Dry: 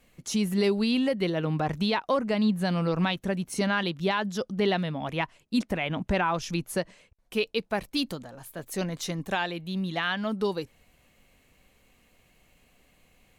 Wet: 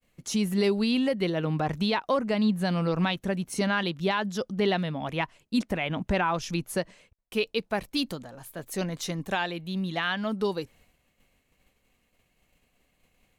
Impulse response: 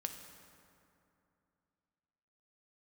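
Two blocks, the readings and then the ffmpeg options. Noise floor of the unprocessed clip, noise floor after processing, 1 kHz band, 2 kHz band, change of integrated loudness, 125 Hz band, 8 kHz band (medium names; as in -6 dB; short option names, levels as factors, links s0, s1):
-64 dBFS, -72 dBFS, 0.0 dB, 0.0 dB, 0.0 dB, 0.0 dB, 0.0 dB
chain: -af "agate=range=0.0224:threshold=0.00178:ratio=3:detection=peak"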